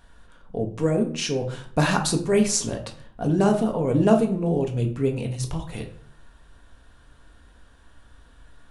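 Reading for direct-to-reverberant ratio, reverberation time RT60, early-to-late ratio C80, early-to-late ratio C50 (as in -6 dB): 3.0 dB, 0.55 s, 14.0 dB, 10.5 dB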